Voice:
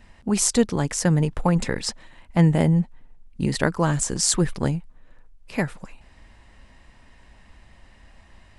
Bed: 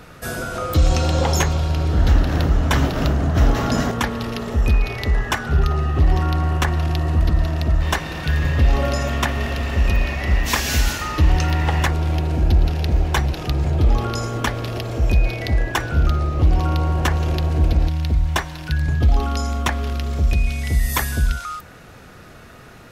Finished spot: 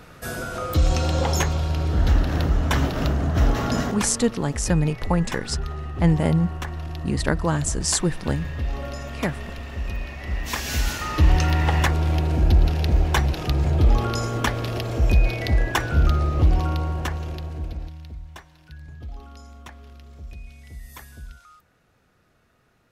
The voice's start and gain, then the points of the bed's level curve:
3.65 s, -1.5 dB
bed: 3.78 s -3.5 dB
4.40 s -11.5 dB
10.14 s -11.5 dB
11.25 s -1 dB
16.38 s -1 dB
18.35 s -21 dB

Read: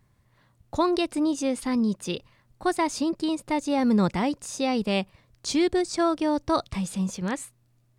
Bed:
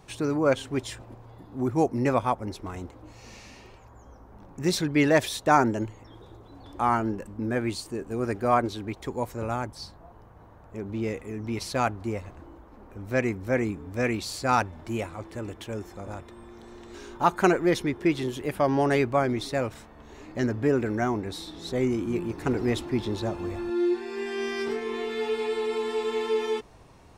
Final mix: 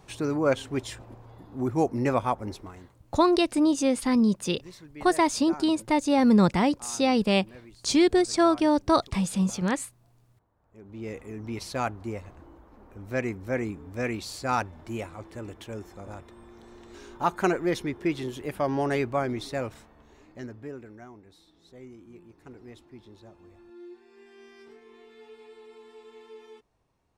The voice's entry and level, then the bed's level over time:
2.40 s, +2.5 dB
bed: 2.53 s -1 dB
3.08 s -21.5 dB
10.53 s -21.5 dB
11.18 s -3.5 dB
19.69 s -3.5 dB
21.09 s -21 dB

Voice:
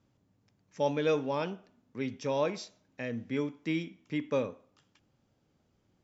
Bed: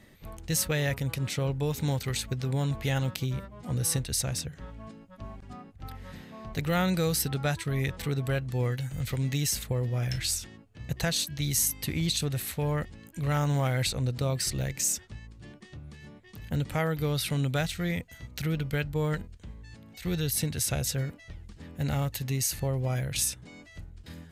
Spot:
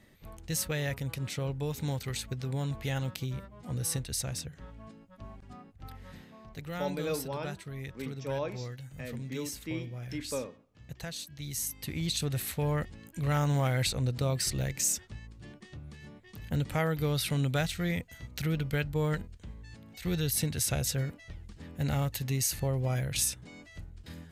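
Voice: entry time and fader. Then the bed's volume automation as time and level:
6.00 s, -5.5 dB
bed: 6.17 s -4.5 dB
6.60 s -11.5 dB
11.31 s -11.5 dB
12.36 s -1 dB

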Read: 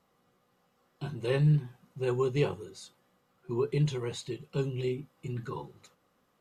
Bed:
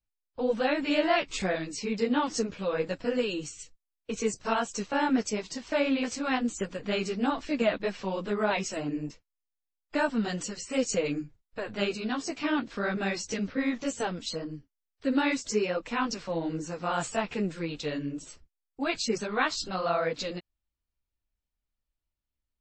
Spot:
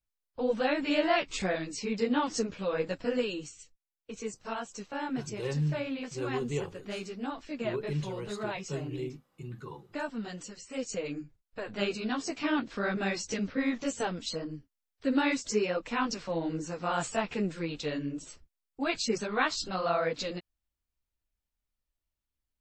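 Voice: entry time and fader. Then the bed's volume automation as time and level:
4.15 s, -5.5 dB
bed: 3.19 s -1.5 dB
3.72 s -8.5 dB
10.71 s -8.5 dB
11.97 s -1 dB

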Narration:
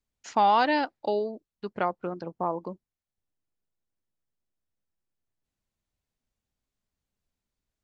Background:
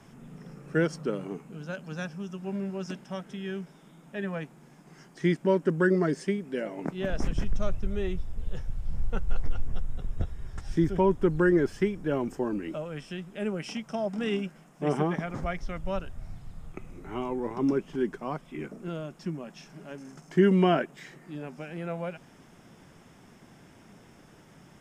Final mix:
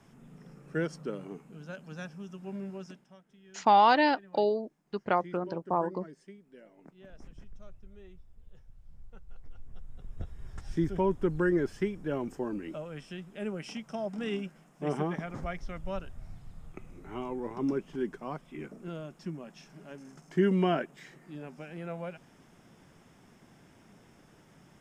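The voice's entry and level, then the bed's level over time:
3.30 s, +0.5 dB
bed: 2.76 s -6 dB
3.21 s -21.5 dB
9.38 s -21.5 dB
10.49 s -4.5 dB

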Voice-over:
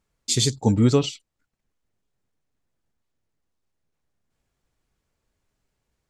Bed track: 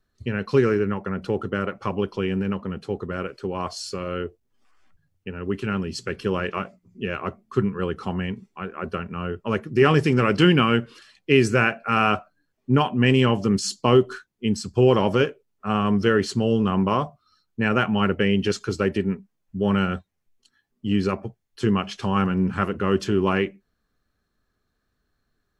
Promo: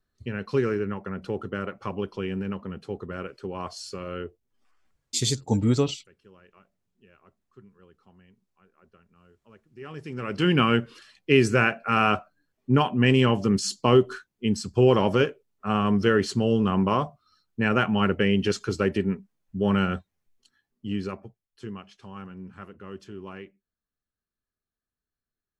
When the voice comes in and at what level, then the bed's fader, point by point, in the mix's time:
4.85 s, -4.0 dB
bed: 4.71 s -5.5 dB
5.44 s -29.5 dB
9.67 s -29.5 dB
10.61 s -1.5 dB
20.42 s -1.5 dB
21.94 s -19 dB

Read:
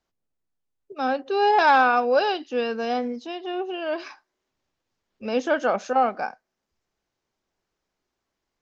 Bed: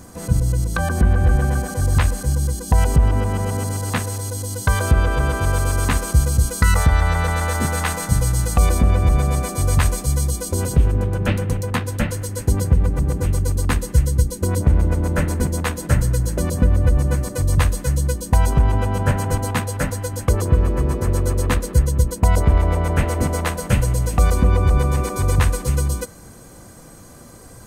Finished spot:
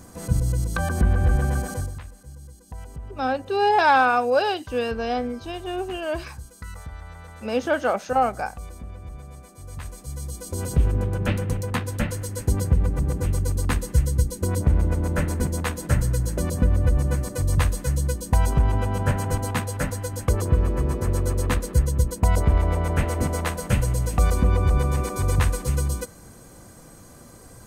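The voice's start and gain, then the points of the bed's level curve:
2.20 s, 0.0 dB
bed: 1.76 s -4 dB
2.00 s -22.5 dB
9.59 s -22.5 dB
10.82 s -4 dB

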